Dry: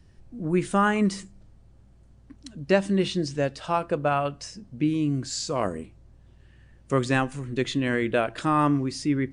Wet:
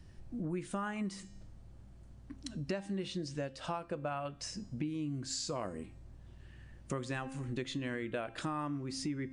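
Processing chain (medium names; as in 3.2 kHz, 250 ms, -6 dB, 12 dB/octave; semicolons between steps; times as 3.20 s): band-stop 430 Hz, Q 12; de-hum 265.8 Hz, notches 33; compression 5:1, threshold -36 dBFS, peak gain reduction 19 dB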